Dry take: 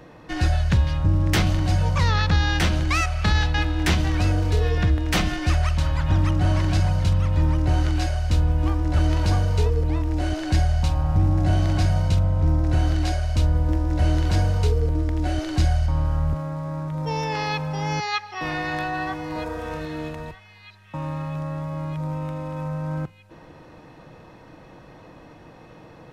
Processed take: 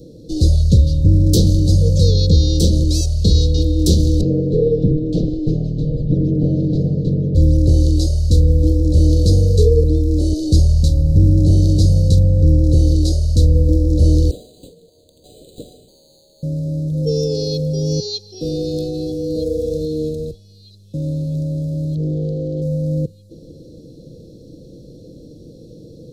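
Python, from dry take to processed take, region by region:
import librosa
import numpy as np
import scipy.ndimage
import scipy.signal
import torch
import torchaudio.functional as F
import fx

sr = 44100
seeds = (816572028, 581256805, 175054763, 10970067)

y = fx.chain(x, sr, fx.lower_of_two(delay_ms=6.6),
    fx.lowpass(hz=1700.0, slope=12), at=(4.21, 7.35))
y = fx.chain(y, sr, fx.steep_highpass(hz=780.0, slope=36),
    fx.resample_linear(factor=8), at=(14.31, 16.43))
y = fx.chain(y, sr, fx.lowpass(hz=4500.0, slope=12),
    fx.doppler_dist(depth_ms=0.51), at=(21.95, 22.62))
y = scipy.signal.sosfilt(scipy.signal.cheby1(4, 1.0, [510.0, 4000.0], 'bandstop', fs=sr, output='sos'), y)
y = fx.dynamic_eq(y, sr, hz=480.0, q=3.4, threshold_db=-46.0, ratio=4.0, max_db=6)
y = y * 10.0 ** (8.5 / 20.0)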